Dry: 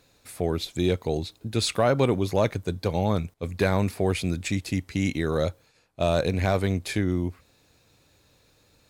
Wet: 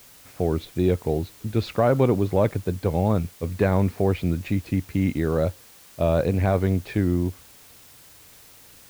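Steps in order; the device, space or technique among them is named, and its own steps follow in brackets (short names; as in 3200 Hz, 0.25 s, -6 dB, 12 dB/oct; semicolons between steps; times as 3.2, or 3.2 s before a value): cassette deck with a dirty head (tape spacing loss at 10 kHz 36 dB; wow and flutter; white noise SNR 26 dB); gain +4 dB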